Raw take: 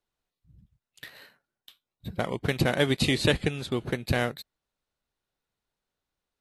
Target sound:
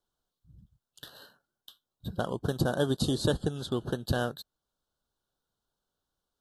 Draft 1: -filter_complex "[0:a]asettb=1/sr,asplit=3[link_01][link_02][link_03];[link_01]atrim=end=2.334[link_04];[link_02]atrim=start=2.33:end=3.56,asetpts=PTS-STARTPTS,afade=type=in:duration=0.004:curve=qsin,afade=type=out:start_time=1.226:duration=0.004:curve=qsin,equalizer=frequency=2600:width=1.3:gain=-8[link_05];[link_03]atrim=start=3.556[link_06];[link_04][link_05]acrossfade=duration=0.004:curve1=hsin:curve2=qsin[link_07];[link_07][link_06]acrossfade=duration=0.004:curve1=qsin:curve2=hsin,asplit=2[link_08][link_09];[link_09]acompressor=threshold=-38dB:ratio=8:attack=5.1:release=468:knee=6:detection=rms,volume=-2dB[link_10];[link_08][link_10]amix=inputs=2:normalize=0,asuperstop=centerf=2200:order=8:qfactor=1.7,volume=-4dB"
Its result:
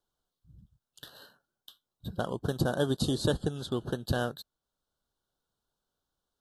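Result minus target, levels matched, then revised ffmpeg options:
downward compressor: peak gain reduction +6 dB
-filter_complex "[0:a]asettb=1/sr,asplit=3[link_01][link_02][link_03];[link_01]atrim=end=2.334[link_04];[link_02]atrim=start=2.33:end=3.56,asetpts=PTS-STARTPTS,afade=type=in:duration=0.004:curve=qsin,afade=type=out:start_time=1.226:duration=0.004:curve=qsin,equalizer=frequency=2600:width=1.3:gain=-8[link_05];[link_03]atrim=start=3.556[link_06];[link_04][link_05]acrossfade=duration=0.004:curve1=hsin:curve2=qsin[link_07];[link_07][link_06]acrossfade=duration=0.004:curve1=qsin:curve2=hsin,asplit=2[link_08][link_09];[link_09]acompressor=threshold=-31dB:ratio=8:attack=5.1:release=468:knee=6:detection=rms,volume=-2dB[link_10];[link_08][link_10]amix=inputs=2:normalize=0,asuperstop=centerf=2200:order=8:qfactor=1.7,volume=-4dB"

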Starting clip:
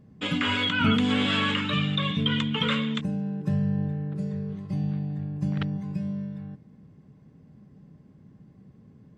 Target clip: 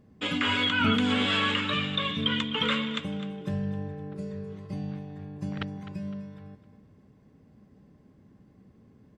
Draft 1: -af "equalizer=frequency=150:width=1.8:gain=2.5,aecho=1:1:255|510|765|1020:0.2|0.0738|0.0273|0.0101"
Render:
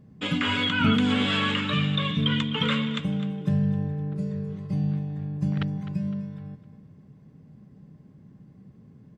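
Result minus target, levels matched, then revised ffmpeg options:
125 Hz band +6.0 dB
-af "equalizer=frequency=150:width=1.8:gain=-9.5,aecho=1:1:255|510|765|1020:0.2|0.0738|0.0273|0.0101"

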